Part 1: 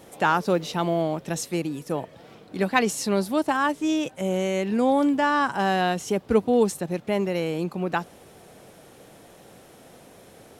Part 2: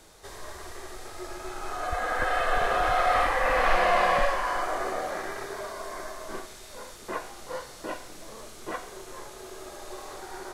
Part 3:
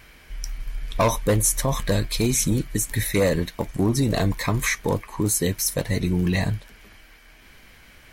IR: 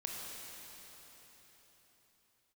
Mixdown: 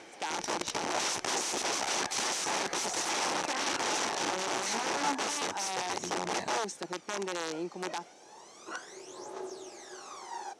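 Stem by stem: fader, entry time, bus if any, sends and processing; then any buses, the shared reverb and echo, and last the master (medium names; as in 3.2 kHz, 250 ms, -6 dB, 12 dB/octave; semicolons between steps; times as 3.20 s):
-10.0 dB, 0.00 s, no send, peak limiter -16 dBFS, peak gain reduction 10.5 dB
-8.0 dB, 0.00 s, no send, phaser 0.32 Hz, delay 1.7 ms, feedback 75%; auto duck -10 dB, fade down 0.30 s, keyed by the third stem
2.75 s -4 dB -> 3.18 s -13 dB, 0.00 s, no send, none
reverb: none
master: integer overflow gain 27.5 dB; cabinet simulation 270–8600 Hz, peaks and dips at 350 Hz +5 dB, 850 Hz +7 dB, 5.9 kHz +8 dB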